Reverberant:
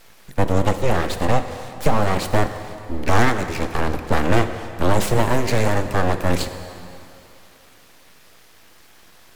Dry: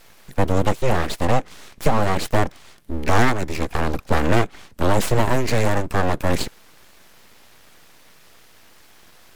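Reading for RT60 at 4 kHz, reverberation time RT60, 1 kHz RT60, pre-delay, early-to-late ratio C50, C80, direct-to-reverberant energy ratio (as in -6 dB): 2.3 s, 2.9 s, 2.9 s, 12 ms, 9.5 dB, 10.0 dB, 8.5 dB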